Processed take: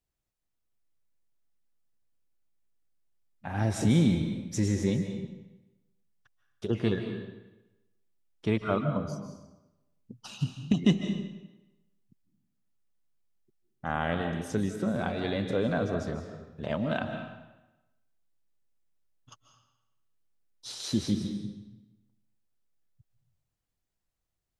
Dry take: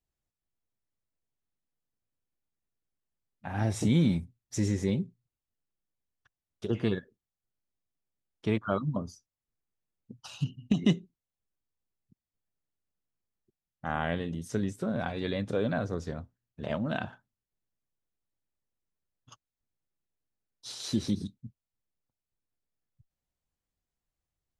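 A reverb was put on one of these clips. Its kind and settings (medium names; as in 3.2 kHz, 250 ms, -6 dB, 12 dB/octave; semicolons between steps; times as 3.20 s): algorithmic reverb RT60 1 s, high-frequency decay 0.9×, pre-delay 110 ms, DRR 6 dB; trim +1 dB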